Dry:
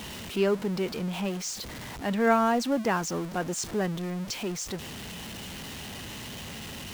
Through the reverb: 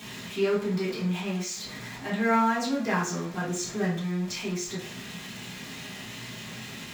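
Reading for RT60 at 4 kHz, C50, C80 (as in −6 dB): 0.40 s, 6.0 dB, 11.5 dB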